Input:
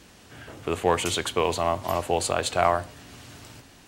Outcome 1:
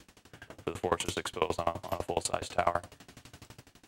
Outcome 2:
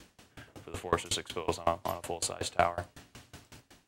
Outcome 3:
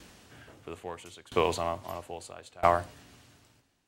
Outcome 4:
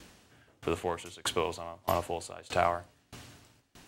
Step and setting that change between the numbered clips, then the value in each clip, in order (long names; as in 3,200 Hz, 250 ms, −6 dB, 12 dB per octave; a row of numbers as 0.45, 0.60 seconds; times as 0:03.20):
tremolo with a ramp in dB, speed: 12, 5.4, 0.76, 1.6 Hertz